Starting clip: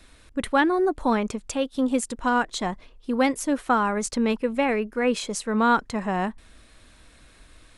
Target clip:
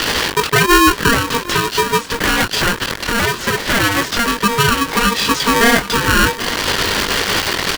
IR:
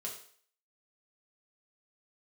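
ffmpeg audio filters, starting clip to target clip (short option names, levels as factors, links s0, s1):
-filter_complex "[0:a]aeval=exprs='val(0)+0.5*0.0376*sgn(val(0))':c=same,equalizer=f=1500:w=1.1:g=-6,acompressor=threshold=0.0251:ratio=10,flanger=delay=18:depth=3.9:speed=1.1,asettb=1/sr,asplit=3[s0][s1][s2];[s0]atrim=end=2.044[s3];[s1]atrim=start=2.04:end=4.33,asetpts=PTS-STARTPTS,afade=t=in:d=0.004:c=qsin,afade=t=out:st=2.286:d=0.004:c=qsin,aeval=exprs='0.0141*(abs(mod(val(0)/0.0141+3,4)-2)-1)':c=same[s4];[s2]atrim=start=4.326[s5];[s3][s4]acrossfade=d=0.004:c1=hsin:c2=qsin[s6];[s6][s5]acrossfade=d=0.004:c1=qsin:c2=hsin,highpass=420,equalizer=f=560:t=q:w=4:g=-7,equalizer=f=830:t=q:w=4:g=3,equalizer=f=1200:t=q:w=4:g=4,equalizer=f=1800:t=q:w=4:g=-4,equalizer=f=3000:t=q:w=4:g=-5,lowpass=f=4200:w=0.5412,lowpass=f=4200:w=1.3066,aecho=1:1:773:0.158,alimiter=level_in=33.5:limit=0.891:release=50:level=0:latency=1,aeval=exprs='val(0)*sgn(sin(2*PI*700*n/s))':c=same,volume=0.891"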